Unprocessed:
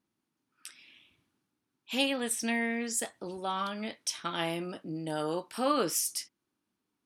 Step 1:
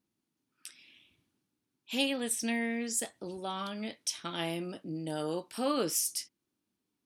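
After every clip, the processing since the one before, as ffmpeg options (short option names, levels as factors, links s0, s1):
-af "equalizer=f=1200:t=o:w=1.7:g=-6"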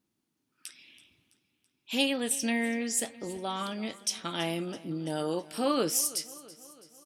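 -af "aecho=1:1:330|660|990|1320|1650:0.106|0.0604|0.0344|0.0196|0.0112,volume=1.41"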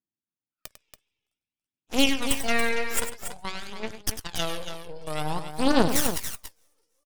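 -af "aeval=exprs='0.224*(cos(1*acos(clip(val(0)/0.224,-1,1)))-cos(1*PI/2))+0.0794*(cos(4*acos(clip(val(0)/0.224,-1,1)))-cos(4*PI/2))+0.00794*(cos(5*acos(clip(val(0)/0.224,-1,1)))-cos(5*PI/2))+0.0398*(cos(7*acos(clip(val(0)/0.224,-1,1)))-cos(7*PI/2))':c=same,aphaser=in_gain=1:out_gain=1:delay=2.4:decay=0.55:speed=0.52:type=triangular,aecho=1:1:99.13|282.8:0.282|0.355"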